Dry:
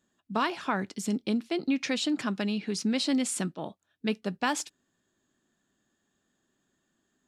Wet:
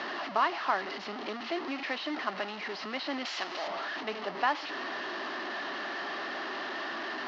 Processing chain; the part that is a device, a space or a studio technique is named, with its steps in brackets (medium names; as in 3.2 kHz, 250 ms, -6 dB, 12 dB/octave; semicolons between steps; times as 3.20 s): digital answering machine (band-pass 370–3200 Hz; one-bit delta coder 32 kbps, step -30 dBFS; cabinet simulation 470–3800 Hz, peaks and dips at 490 Hz -10 dB, 900 Hz -3 dB, 1.5 kHz -6 dB, 2.4 kHz -9 dB, 3.5 kHz -9 dB); 3.25–3.68 s: RIAA curve recording; trim +5.5 dB